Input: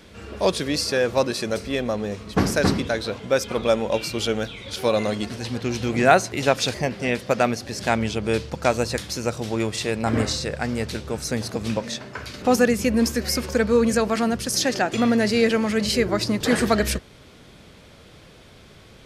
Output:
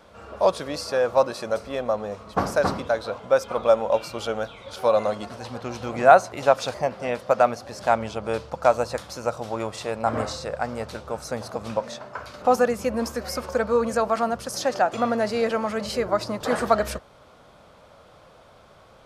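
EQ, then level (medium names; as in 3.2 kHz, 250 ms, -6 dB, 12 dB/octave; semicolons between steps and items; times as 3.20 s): high-order bell 850 Hz +12 dB; -8.5 dB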